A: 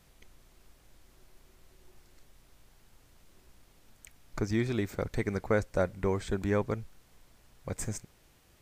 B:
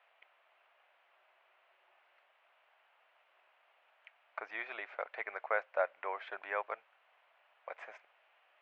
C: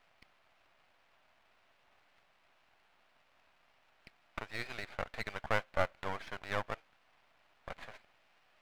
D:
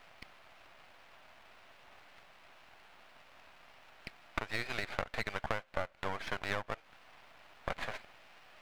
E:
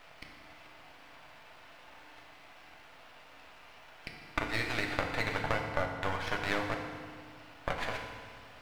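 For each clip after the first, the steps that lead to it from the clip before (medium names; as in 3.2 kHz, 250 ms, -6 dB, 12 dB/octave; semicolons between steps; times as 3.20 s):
elliptic band-pass 630–2800 Hz, stop band 60 dB; trim +1 dB
half-wave rectifier; trim +4 dB
compression 20:1, threshold -41 dBFS, peak gain reduction 18.5 dB; trim +11 dB
FDN reverb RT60 1.9 s, low-frequency decay 1.4×, high-frequency decay 0.8×, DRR 1.5 dB; trim +2.5 dB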